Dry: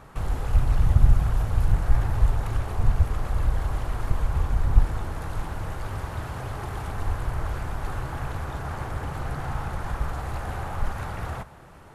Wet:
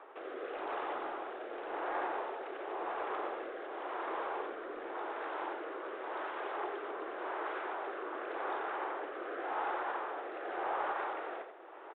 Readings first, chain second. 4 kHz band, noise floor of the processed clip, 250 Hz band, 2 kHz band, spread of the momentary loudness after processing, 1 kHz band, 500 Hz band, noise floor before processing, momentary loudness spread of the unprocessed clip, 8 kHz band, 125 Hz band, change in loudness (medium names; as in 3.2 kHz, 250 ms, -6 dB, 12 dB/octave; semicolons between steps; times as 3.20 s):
-7.5 dB, -49 dBFS, -9.0 dB, -2.5 dB, 6 LU, -1.5 dB, +0.5 dB, -46 dBFS, 10 LU, no reading, under -40 dB, -11.0 dB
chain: elliptic high-pass 350 Hz, stop band 60 dB; treble shelf 2.9 kHz -10.5 dB; rotary cabinet horn 0.9 Hz; in parallel at -12 dB: hard clipper -36.5 dBFS, distortion -16 dB; on the sum: delay 88 ms -7.5 dB; resampled via 8 kHz; trim +1 dB